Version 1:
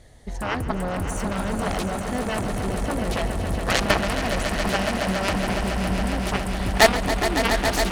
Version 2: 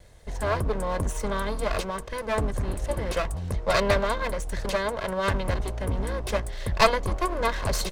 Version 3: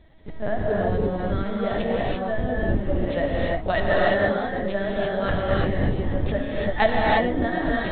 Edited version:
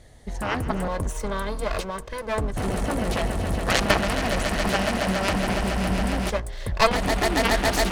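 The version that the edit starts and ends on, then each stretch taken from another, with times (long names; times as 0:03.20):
1
0:00.88–0:02.57: punch in from 2
0:06.30–0:06.91: punch in from 2
not used: 3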